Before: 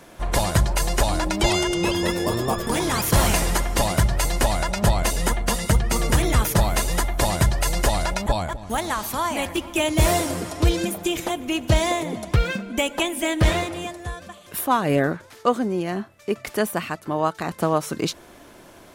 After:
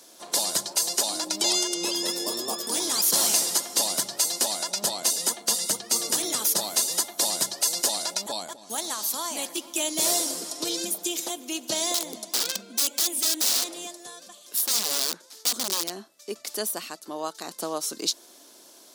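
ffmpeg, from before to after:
-filter_complex "[0:a]asettb=1/sr,asplit=3[a][b][c];[a]atrim=end=11.944[d];[b]atrim=start=11.94:end=15.9,asetpts=PTS-STARTPTS,afade=t=in:d=0.004:c=qsin,afade=t=out:st=3.956:d=0.004:c=qsin,aeval=exprs='(mod(8.91*val(0)+1,2)-1)/8.91':c=same[e];[c]atrim=start=15.896[f];[d][e]acrossfade=d=0.004:c1=hsin:c2=qsin[g];[g][f]acrossfade=d=0.004:c1=qsin:c2=hsin,highpass=f=240:w=0.5412,highpass=f=240:w=1.3066,highshelf=f=3.2k:t=q:w=1.5:g=12.5,volume=-9dB"

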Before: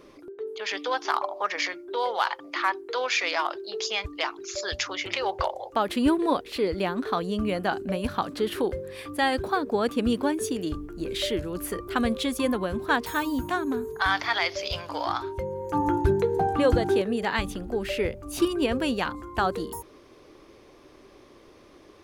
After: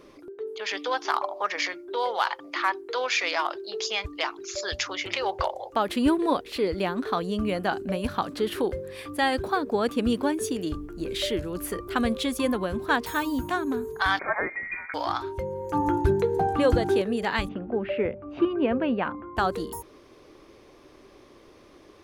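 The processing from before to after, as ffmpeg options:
-filter_complex "[0:a]asettb=1/sr,asplit=3[a][b][c];[a]atrim=end=14.194[d];[b]atrim=start=14.19:end=14.94,asetpts=PTS-STARTPTS,afade=t=in:d=0.004:c=qsin,afade=t=out:st=0.746:d=0.004:c=qsin,lowpass=f=2.1k:t=q:w=0.5098,lowpass=f=2.1k:t=q:w=0.6013,lowpass=f=2.1k:t=q:w=0.9,lowpass=f=2.1k:t=q:w=2.563,afreqshift=-2500[e];[c]atrim=start=14.936[f];[d][e]acrossfade=d=0.004:c1=hsin:c2=qsin[g];[g][f]acrossfade=d=0.004:c1=qsin:c2=hsin,asplit=3[h][i][j];[h]afade=t=out:st=17.47:d=0.02[k];[i]highpass=110,equalizer=f=220:t=q:w=4:g=4,equalizer=f=630:t=q:w=4:g=4,equalizer=f=1.9k:t=q:w=4:g=-3,lowpass=f=2.4k:w=0.5412,lowpass=f=2.4k:w=1.3066,afade=t=in:st=17.47:d=0.02,afade=t=out:st=19.36:d=0.02[l];[j]afade=t=in:st=19.36:d=0.02[m];[k][l][m]amix=inputs=3:normalize=0"

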